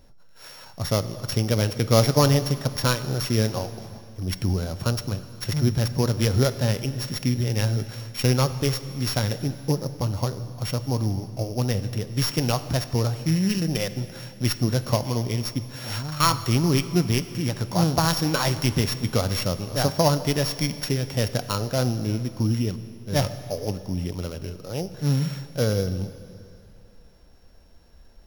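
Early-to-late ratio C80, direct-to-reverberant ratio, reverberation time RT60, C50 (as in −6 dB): 13.5 dB, 11.5 dB, 2.6 s, 12.5 dB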